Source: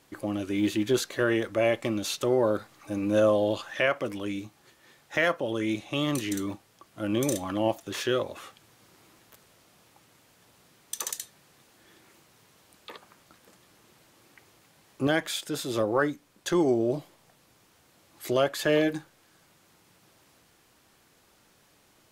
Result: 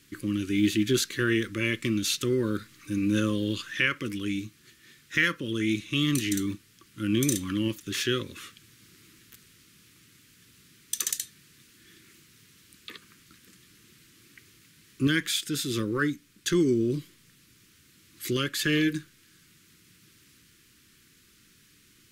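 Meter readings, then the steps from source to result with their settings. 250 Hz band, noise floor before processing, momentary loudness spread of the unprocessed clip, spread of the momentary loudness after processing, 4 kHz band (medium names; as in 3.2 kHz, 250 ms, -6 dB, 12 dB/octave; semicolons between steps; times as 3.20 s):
+2.0 dB, -63 dBFS, 13 LU, 11 LU, +4.5 dB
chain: Butterworth band-stop 720 Hz, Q 0.56; trim +4.5 dB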